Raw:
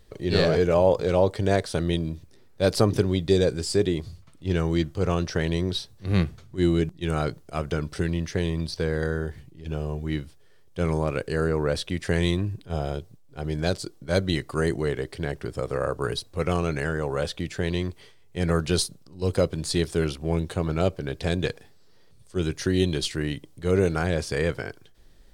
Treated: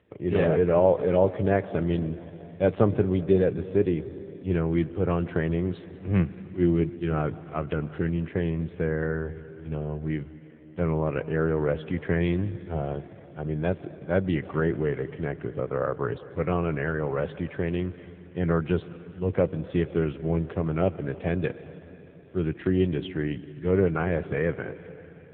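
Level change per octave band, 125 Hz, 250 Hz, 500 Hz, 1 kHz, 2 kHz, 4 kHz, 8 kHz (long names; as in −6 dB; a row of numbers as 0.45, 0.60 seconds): −1.0 dB, 0.0 dB, −0.5 dB, −1.5 dB, −2.5 dB, −15.5 dB, below −40 dB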